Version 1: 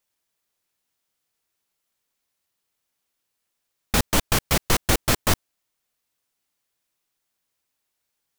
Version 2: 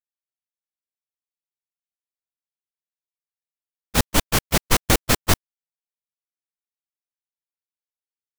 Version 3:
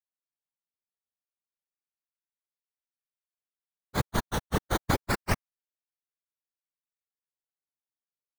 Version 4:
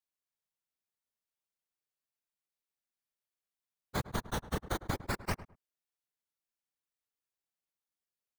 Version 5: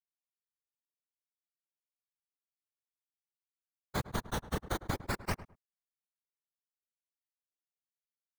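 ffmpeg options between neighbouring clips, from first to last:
ffmpeg -i in.wav -af "agate=range=-31dB:threshold=-19dB:ratio=16:detection=peak,volume=3.5dB" out.wav
ffmpeg -i in.wav -af "lowpass=frequency=2000:width_type=q:width=1.6,acrusher=samples=12:mix=1:aa=0.000001:lfo=1:lforange=12:lforate=0.28,afftfilt=real='hypot(re,im)*cos(2*PI*random(0))':imag='hypot(re,im)*sin(2*PI*random(1))':win_size=512:overlap=0.75,volume=-2.5dB" out.wav
ffmpeg -i in.wav -filter_complex "[0:a]acompressor=threshold=-31dB:ratio=6,asplit=2[link_01][link_02];[link_02]adelay=105,lowpass=frequency=1300:poles=1,volume=-14.5dB,asplit=2[link_03][link_04];[link_04]adelay=105,lowpass=frequency=1300:poles=1,volume=0.22[link_05];[link_01][link_03][link_05]amix=inputs=3:normalize=0" out.wav
ffmpeg -i in.wav -af "agate=range=-33dB:threshold=-54dB:ratio=3:detection=peak" out.wav

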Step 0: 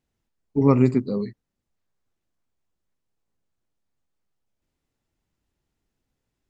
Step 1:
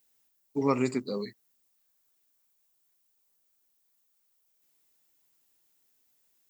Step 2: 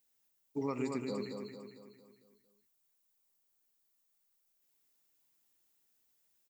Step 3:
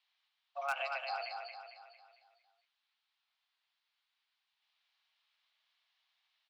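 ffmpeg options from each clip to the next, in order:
ffmpeg -i in.wav -filter_complex "[0:a]aemphasis=mode=production:type=riaa,asplit=2[link_01][link_02];[link_02]acompressor=threshold=-31dB:ratio=6,volume=-1dB[link_03];[link_01][link_03]amix=inputs=2:normalize=0,lowshelf=frequency=140:gain=-3.5,volume=-5dB" out.wav
ffmpeg -i in.wav -filter_complex "[0:a]alimiter=limit=-20.5dB:level=0:latency=1:release=151,asplit=2[link_01][link_02];[link_02]aecho=0:1:226|452|678|904|1130|1356:0.562|0.27|0.13|0.0622|0.0299|0.0143[link_03];[link_01][link_03]amix=inputs=2:normalize=0,volume=-6dB" out.wav
ffmpeg -i in.wav -af "highpass=frequency=460:width_type=q:width=0.5412,highpass=frequency=460:width_type=q:width=1.307,lowpass=frequency=3600:width_type=q:width=0.5176,lowpass=frequency=3600:width_type=q:width=0.7071,lowpass=frequency=3600:width_type=q:width=1.932,afreqshift=280,asoftclip=type=hard:threshold=-32dB,crystalizer=i=6:c=0,volume=2dB" out.wav

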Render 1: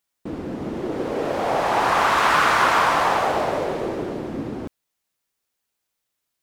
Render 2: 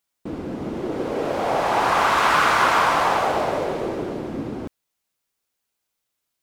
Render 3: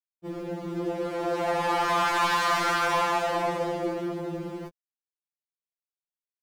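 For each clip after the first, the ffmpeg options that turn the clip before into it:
ffmpeg -i in.wav -af "bandreject=frequency=1800:width=25" out.wav
ffmpeg -i in.wav -af "acrusher=bits=9:mix=0:aa=0.000001,asoftclip=type=hard:threshold=-18dB,afftfilt=real='re*2.83*eq(mod(b,8),0)':imag='im*2.83*eq(mod(b,8),0)':win_size=2048:overlap=0.75,volume=-1.5dB" out.wav

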